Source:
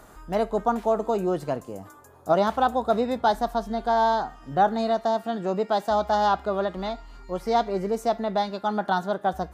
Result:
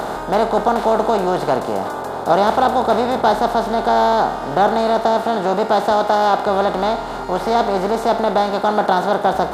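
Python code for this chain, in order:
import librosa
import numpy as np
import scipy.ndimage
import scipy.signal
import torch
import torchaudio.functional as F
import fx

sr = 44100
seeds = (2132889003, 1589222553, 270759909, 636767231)

y = fx.bin_compress(x, sr, power=0.4)
y = fx.highpass(y, sr, hz=190.0, slope=6, at=(5.92, 6.47))
y = y * 10.0 ** (2.0 / 20.0)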